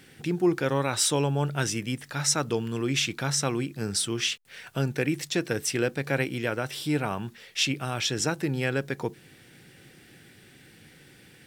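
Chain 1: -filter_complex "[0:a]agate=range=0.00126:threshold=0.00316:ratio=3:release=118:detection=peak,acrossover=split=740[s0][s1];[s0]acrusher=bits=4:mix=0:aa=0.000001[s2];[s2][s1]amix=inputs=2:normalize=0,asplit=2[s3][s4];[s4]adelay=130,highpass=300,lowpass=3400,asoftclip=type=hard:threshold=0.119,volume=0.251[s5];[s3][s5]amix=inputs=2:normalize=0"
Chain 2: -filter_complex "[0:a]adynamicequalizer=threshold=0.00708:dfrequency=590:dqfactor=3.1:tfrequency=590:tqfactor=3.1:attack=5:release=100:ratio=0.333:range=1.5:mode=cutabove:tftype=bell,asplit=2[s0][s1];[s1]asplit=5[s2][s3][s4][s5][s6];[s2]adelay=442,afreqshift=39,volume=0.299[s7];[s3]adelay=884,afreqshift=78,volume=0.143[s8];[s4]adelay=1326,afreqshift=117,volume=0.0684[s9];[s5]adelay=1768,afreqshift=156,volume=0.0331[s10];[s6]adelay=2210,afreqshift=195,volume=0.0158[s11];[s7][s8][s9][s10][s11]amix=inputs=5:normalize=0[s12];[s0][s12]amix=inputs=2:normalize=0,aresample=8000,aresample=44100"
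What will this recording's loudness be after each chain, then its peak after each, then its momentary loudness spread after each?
-27.0 LUFS, -29.0 LUFS; -10.0 dBFS, -10.0 dBFS; 7 LU, 8 LU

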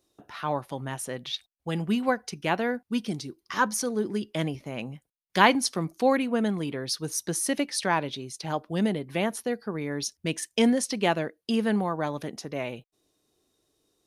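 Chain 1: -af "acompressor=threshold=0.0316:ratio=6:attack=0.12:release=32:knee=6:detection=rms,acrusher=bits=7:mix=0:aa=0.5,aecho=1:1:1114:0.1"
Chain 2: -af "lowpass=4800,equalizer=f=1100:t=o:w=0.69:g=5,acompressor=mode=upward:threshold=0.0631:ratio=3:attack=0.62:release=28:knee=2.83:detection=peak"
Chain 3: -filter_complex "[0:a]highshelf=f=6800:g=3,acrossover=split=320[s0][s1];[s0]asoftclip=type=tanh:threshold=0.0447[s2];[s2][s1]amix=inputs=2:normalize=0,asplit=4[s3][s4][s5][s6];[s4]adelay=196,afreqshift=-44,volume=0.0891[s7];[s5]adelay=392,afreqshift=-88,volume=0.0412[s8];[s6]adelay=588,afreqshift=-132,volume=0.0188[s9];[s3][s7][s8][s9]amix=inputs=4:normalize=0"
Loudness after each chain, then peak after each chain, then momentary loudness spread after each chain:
-37.0 LUFS, -27.0 LUFS, -28.5 LUFS; -25.5 dBFS, -2.5 dBFS, -5.0 dBFS; 5 LU, 10 LU, 10 LU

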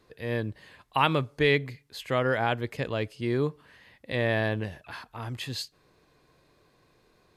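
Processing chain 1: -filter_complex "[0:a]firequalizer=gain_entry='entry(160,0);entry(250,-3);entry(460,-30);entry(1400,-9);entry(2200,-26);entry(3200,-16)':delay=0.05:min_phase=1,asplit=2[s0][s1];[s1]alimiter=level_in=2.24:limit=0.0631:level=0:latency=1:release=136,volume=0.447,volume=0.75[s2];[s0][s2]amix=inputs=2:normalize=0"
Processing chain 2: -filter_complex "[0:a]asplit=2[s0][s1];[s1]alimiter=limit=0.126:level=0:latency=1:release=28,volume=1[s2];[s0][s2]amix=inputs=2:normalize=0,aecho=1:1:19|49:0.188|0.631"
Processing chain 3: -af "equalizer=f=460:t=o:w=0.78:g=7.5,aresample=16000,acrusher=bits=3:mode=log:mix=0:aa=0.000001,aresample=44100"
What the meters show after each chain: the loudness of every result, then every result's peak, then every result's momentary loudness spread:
-33.0 LUFS, -23.0 LUFS, -25.0 LUFS; -18.0 dBFS, -4.5 dBFS, -6.0 dBFS; 14 LU, 13 LU, 17 LU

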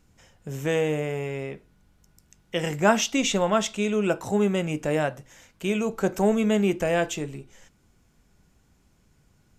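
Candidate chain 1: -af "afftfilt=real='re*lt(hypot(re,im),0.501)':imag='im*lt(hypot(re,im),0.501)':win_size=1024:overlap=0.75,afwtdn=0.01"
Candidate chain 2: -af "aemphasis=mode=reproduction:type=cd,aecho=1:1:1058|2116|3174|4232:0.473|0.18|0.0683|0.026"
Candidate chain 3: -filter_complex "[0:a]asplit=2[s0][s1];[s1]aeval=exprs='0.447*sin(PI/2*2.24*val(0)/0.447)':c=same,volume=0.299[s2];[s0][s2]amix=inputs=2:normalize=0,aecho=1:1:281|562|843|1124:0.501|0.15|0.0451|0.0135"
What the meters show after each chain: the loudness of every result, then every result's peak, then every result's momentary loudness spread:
-29.5 LUFS, -25.5 LUFS, -19.0 LUFS; -12.5 dBFS, -7.0 dBFS, -5.0 dBFS; 11 LU, 15 LU, 13 LU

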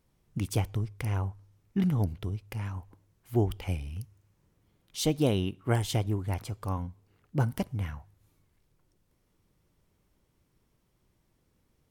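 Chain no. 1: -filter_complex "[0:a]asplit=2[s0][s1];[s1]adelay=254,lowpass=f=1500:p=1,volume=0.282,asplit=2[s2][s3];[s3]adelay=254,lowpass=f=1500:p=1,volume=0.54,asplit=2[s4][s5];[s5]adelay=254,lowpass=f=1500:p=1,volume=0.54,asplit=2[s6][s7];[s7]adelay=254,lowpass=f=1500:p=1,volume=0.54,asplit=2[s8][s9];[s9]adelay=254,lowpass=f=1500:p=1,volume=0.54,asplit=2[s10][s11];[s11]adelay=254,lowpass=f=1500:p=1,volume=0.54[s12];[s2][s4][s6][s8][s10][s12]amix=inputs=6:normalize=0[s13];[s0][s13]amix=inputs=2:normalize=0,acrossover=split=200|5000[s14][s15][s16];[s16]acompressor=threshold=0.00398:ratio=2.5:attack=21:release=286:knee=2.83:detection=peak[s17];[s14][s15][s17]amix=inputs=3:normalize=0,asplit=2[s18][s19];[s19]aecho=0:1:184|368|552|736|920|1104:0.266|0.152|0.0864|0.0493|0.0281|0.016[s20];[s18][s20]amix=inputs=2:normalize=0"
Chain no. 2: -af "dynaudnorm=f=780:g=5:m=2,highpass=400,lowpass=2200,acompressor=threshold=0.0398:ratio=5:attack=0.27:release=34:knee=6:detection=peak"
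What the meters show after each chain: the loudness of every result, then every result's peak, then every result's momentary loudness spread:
-31.0 LUFS, -40.5 LUFS; -12.0 dBFS, -23.0 dBFS; 17 LU, 13 LU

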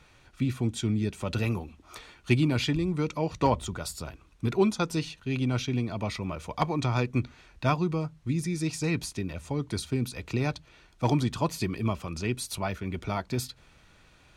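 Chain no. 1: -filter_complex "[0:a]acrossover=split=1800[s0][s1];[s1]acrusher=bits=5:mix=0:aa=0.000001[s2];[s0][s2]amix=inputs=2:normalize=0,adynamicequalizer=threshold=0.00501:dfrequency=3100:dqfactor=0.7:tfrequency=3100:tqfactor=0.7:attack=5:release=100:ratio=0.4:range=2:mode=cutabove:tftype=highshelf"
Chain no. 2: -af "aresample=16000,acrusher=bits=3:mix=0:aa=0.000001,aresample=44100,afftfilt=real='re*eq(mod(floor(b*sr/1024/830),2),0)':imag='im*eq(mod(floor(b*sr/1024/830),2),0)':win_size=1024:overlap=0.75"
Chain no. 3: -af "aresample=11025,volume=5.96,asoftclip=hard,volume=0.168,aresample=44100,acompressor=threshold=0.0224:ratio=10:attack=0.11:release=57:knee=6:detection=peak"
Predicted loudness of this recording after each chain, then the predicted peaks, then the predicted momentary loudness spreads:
-30.0 LUFS, -30.0 LUFS, -41.0 LUFS; -10.0 dBFS, -9.5 dBFS, -31.0 dBFS; 10 LU, 11 LU, 8 LU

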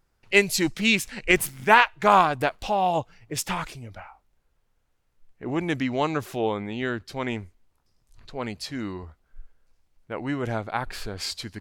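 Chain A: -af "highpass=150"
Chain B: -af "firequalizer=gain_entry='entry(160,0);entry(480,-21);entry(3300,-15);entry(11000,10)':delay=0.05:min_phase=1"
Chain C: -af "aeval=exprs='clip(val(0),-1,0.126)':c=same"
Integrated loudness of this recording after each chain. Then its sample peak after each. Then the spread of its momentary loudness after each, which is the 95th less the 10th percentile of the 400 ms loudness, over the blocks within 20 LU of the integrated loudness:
-24.5 LUFS, -32.5 LUFS, -25.5 LUFS; -1.5 dBFS, -7.5 dBFS, -1.5 dBFS; 17 LU, 16 LU, 15 LU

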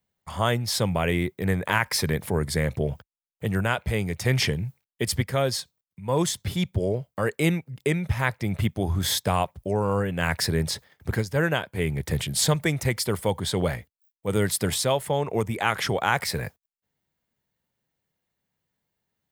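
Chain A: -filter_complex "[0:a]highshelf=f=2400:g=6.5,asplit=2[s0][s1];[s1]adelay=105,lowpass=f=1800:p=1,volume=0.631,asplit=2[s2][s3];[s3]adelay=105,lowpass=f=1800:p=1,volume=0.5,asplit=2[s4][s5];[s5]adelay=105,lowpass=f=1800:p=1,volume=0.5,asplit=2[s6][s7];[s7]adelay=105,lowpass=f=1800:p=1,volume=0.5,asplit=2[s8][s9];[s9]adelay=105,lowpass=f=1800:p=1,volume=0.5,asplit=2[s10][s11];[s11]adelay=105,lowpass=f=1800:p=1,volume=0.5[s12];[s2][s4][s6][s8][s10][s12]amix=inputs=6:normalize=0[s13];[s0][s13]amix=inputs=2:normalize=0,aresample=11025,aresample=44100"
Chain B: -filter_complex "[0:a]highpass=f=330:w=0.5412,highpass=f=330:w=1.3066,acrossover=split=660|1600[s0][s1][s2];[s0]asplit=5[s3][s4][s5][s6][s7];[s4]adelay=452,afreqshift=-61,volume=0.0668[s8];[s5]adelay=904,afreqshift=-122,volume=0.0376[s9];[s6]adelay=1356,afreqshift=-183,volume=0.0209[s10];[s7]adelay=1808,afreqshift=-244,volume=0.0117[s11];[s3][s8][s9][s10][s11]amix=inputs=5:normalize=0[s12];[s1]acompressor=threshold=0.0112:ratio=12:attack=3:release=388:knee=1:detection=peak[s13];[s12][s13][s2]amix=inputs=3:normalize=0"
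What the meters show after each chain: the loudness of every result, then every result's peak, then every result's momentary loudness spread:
-24.0 LUFS, -29.5 LUFS; -3.5 dBFS, -11.0 dBFS; 7 LU, 9 LU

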